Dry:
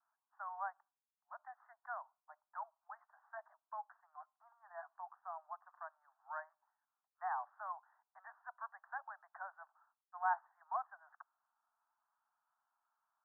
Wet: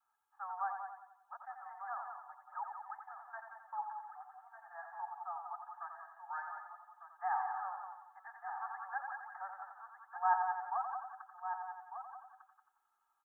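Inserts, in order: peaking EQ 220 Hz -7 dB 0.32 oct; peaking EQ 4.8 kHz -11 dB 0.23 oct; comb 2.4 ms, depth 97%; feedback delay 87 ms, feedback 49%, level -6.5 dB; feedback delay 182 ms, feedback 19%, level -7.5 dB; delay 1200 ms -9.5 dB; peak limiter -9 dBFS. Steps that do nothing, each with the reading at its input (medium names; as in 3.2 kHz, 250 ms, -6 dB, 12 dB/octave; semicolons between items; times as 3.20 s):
peaking EQ 220 Hz: input has nothing below 540 Hz; peaking EQ 4.8 kHz: input has nothing above 1.9 kHz; peak limiter -9 dBFS: peak at its input -19.0 dBFS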